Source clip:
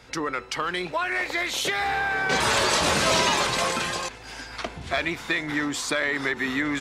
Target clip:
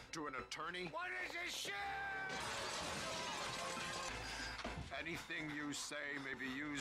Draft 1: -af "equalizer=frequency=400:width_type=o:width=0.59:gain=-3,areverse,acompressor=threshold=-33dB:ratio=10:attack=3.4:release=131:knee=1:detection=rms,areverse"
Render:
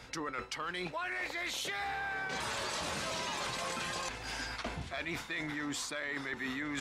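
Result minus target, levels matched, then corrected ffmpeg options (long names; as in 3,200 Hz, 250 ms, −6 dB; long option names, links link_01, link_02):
downward compressor: peak gain reduction −7 dB
-af "equalizer=frequency=400:width_type=o:width=0.59:gain=-3,areverse,acompressor=threshold=-41dB:ratio=10:attack=3.4:release=131:knee=1:detection=rms,areverse"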